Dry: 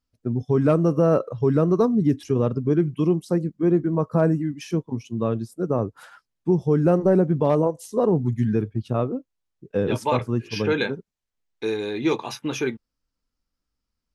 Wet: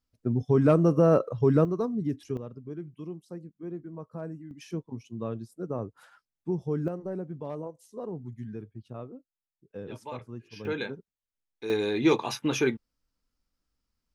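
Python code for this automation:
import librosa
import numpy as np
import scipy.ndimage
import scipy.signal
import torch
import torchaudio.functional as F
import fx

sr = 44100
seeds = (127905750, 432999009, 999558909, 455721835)

y = fx.gain(x, sr, db=fx.steps((0.0, -2.0), (1.65, -10.0), (2.37, -18.5), (4.51, -10.0), (6.88, -17.0), (10.65, -9.5), (11.7, 0.0)))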